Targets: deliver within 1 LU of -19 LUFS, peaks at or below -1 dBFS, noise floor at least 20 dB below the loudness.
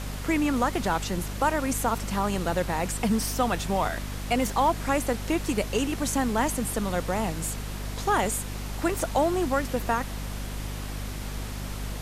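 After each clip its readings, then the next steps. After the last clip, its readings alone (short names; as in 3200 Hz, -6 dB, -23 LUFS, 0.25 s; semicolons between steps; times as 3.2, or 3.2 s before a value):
hum 50 Hz; harmonics up to 250 Hz; hum level -32 dBFS; noise floor -35 dBFS; noise floor target -48 dBFS; loudness -27.5 LUFS; peak -10.5 dBFS; loudness target -19.0 LUFS
-> de-hum 50 Hz, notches 5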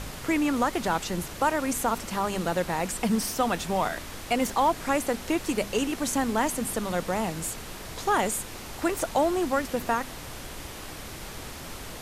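hum none; noise floor -40 dBFS; noise floor target -48 dBFS
-> noise print and reduce 8 dB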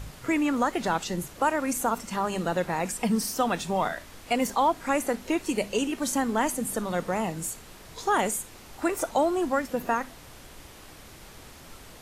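noise floor -48 dBFS; loudness -27.5 LUFS; peak -12.0 dBFS; loudness target -19.0 LUFS
-> gain +8.5 dB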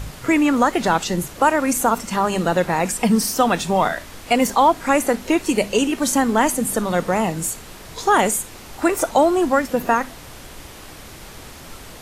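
loudness -19.0 LUFS; peak -3.5 dBFS; noise floor -39 dBFS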